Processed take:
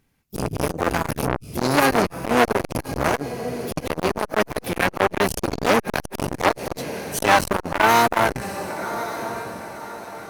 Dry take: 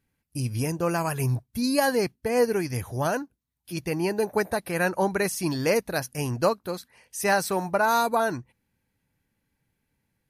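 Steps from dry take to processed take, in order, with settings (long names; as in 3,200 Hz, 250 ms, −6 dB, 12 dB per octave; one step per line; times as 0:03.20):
feedback delay with all-pass diffusion 1,120 ms, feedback 41%, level −13 dB
pitch-shifted copies added −12 semitones −7 dB, +5 semitones −10 dB, +7 semitones −9 dB
in parallel at −6.5 dB: comparator with hysteresis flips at −21 dBFS
on the sum: saturating transformer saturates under 1,800 Hz
level +7 dB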